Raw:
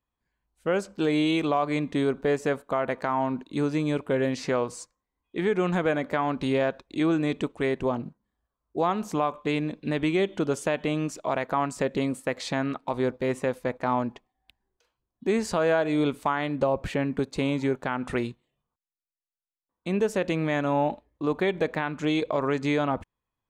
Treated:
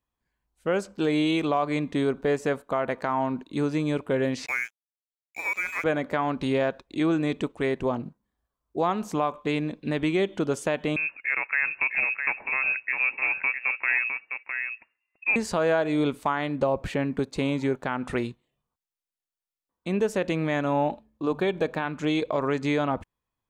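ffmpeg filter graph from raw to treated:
-filter_complex "[0:a]asettb=1/sr,asplit=3[s0][s1][s2];[s0]atrim=end=4.464[s3];[s1]atrim=start=4.46:end=5.84,asetpts=PTS-STARTPTS,afade=t=in:d=0.004:c=qsin,afade=t=out:st=1.376:d=0.004:c=qsin,highpass=f=450:p=1,lowpass=f=2300:t=q:w=0.5098,lowpass=f=2300:t=q:w=0.6013,lowpass=f=2300:t=q:w=0.9,lowpass=f=2300:t=q:w=2.563,afreqshift=-2700,aeval=exprs='sgn(val(0))*max(abs(val(0))-0.00794,0)':c=same[s4];[s2]atrim=start=5.836[s5];[s3][s4]acrossfade=d=0.004:c1=hsin:c2=qsin[s6];[s6][s5]acrossfade=d=0.004:c1=qsin:c2=hsin,asettb=1/sr,asplit=3[s7][s8][s9];[s7]atrim=end=10.964[s10];[s8]atrim=start=10.96:end=15.36,asetpts=PTS-STARTPTS,afade=t=in:d=0.004:c=qsin,afade=t=out:st=4.396:d=0.004:c=qsin,aecho=1:1:658:0.501,atrim=end_sample=194040,lowpass=f=2400:t=q:w=0.5098,lowpass=f=2400:t=q:w=0.6013,lowpass=f=2400:t=q:w=0.9,lowpass=f=2400:t=q:w=2.563,afreqshift=-2800[s11];[s9]atrim=start=15.356[s12];[s10][s11]acrossfade=d=0.004:c1=hsin:c2=qsin[s13];[s13][s12]acrossfade=d=0.004:c1=qsin:c2=hsin,asettb=1/sr,asplit=3[s14][s15][s16];[s14]atrim=end=20.914[s17];[s15]atrim=start=20.91:end=21.85,asetpts=PTS-STARTPTS,afade=t=in:d=0.004:c=qsin,afade=t=out:st=0.936:d=0.004:c=qsin,bandreject=f=2000:w=5.9,bandreject=f=72.97:t=h:w=4,bandreject=f=145.94:t=h:w=4,bandreject=f=218.91:t=h:w=4[s18];[s16]atrim=start=21.846[s19];[s17][s18]acrossfade=d=0.004:c1=hsin:c2=qsin[s20];[s20][s19]acrossfade=d=0.004:c1=qsin:c2=hsin"

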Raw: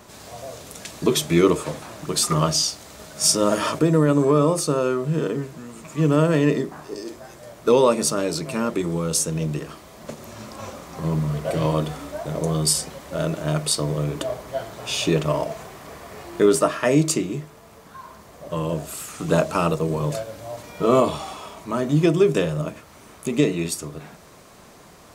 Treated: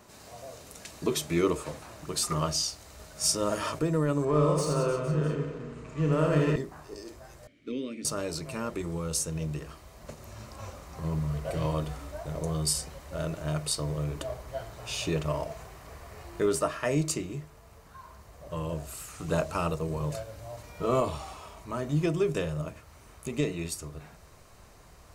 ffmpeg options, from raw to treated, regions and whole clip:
-filter_complex "[0:a]asettb=1/sr,asplit=3[s0][s1][s2];[s0]atrim=end=4.254[s3];[s1]atrim=start=4.25:end=6.56,asetpts=PTS-STARTPTS,afade=t=in:d=0.004:c=qsin,afade=t=out:st=2.306:d=0.004:c=qsin,adynamicsmooth=sensitivity=5:basefreq=4000,asplit=2[s4][s5];[s5]adelay=33,volume=0.447[s6];[s4][s6]amix=inputs=2:normalize=0,atrim=end_sample=101871,aecho=1:1:80|180|305|461.2|656.6:0.631|0.398|0.251|0.158|0.1,atrim=end_sample=101871[s7];[s2]atrim=start=6.556[s8];[s3][s7]acrossfade=d=0.004:c1=hsin:c2=qsin[s9];[s9][s8]acrossfade=d=0.004:c1=qsin:c2=hsin,asettb=1/sr,asplit=3[s10][s11][s12];[s10]atrim=end=7.474[s13];[s11]atrim=start=7.47:end=8.05,asetpts=PTS-STARTPTS,afade=t=in:d=0.004:c=qsin,afade=t=out:st=0.576:d=0.004:c=qsin,asplit=3[s14][s15][s16];[s14]bandpass=f=270:t=q:w=8,volume=1[s17];[s15]bandpass=f=2290:t=q:w=8,volume=0.501[s18];[s16]bandpass=f=3010:t=q:w=8,volume=0.355[s19];[s17][s18][s19]amix=inputs=3:normalize=0,acontrast=78[s20];[s12]atrim=start=8.046[s21];[s13][s20]acrossfade=d=0.004:c1=hsin:c2=qsin[s22];[s22][s21]acrossfade=d=0.004:c1=qsin:c2=hsin,bandreject=f=3400:w=15,asubboost=boost=6.5:cutoff=81,volume=0.398"

